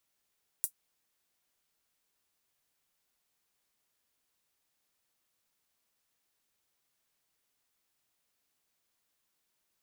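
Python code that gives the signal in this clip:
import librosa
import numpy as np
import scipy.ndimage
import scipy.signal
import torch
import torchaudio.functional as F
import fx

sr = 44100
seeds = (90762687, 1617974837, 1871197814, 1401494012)

y = fx.drum_hat(sr, length_s=0.24, from_hz=9000.0, decay_s=0.09)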